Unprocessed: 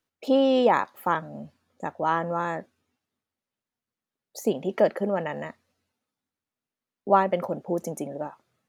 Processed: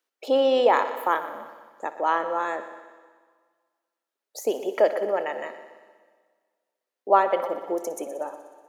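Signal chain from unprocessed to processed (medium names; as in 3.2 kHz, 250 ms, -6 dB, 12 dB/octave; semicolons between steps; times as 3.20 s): high-pass 340 Hz 24 dB/octave; multi-head delay 61 ms, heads first and second, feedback 62%, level -16.5 dB; on a send at -18 dB: reverberation RT60 1.8 s, pre-delay 68 ms; on the sum: trim +1.5 dB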